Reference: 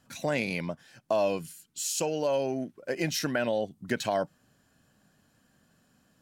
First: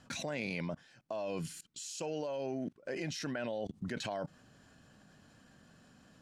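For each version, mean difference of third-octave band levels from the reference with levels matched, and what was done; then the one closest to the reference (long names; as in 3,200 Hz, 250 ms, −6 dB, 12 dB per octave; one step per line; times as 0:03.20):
4.0 dB: high-shelf EQ 6,400 Hz +7.5 dB
output level in coarse steps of 23 dB
high-frequency loss of the air 91 metres
level +9 dB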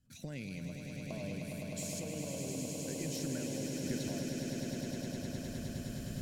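14.0 dB: camcorder AGC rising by 24 dB per second
guitar amp tone stack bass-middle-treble 10-0-1
on a send: echo that builds up and dies away 103 ms, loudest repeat 8, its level −6.5 dB
on the sum: level +6.5 dB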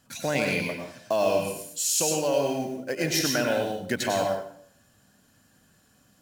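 8.0 dB: in parallel at −8 dB: floating-point word with a short mantissa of 2 bits
on the sum: high-shelf EQ 4,000 Hz +6 dB
dense smooth reverb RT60 0.61 s, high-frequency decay 0.85×, pre-delay 85 ms, DRR 1 dB
level −2 dB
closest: first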